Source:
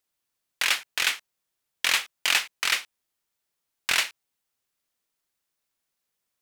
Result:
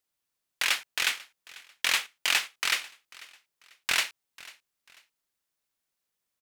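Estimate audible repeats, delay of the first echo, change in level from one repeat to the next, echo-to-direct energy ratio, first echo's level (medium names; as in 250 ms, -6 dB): 2, 493 ms, -10.0 dB, -20.5 dB, -21.0 dB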